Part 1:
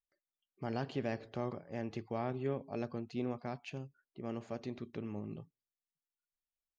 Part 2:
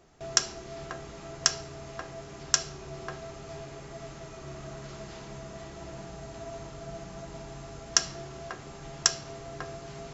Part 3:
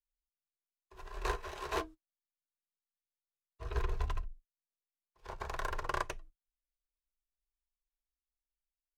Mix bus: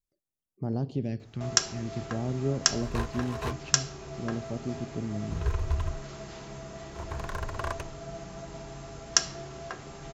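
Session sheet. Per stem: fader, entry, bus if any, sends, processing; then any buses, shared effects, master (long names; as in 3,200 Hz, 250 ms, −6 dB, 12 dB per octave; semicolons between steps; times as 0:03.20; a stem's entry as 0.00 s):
0.0 dB, 0.00 s, no send, low-shelf EQ 360 Hz +11 dB; all-pass phaser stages 2, 0.48 Hz, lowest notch 550–2,700 Hz
+0.5 dB, 1.20 s, no send, no processing
0.0 dB, 1.70 s, no send, parametric band 89 Hz +15 dB 0.93 octaves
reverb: not used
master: no processing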